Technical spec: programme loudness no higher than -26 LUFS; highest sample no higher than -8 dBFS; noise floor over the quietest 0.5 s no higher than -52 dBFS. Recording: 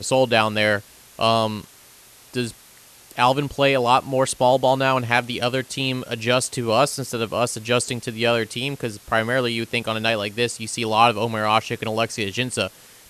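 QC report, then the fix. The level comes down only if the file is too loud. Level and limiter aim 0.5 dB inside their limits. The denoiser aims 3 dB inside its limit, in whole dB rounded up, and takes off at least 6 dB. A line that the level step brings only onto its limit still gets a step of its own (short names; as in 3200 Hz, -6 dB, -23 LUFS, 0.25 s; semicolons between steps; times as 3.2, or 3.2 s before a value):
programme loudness -21.5 LUFS: fail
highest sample -2.0 dBFS: fail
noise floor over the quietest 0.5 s -49 dBFS: fail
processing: gain -5 dB; limiter -8.5 dBFS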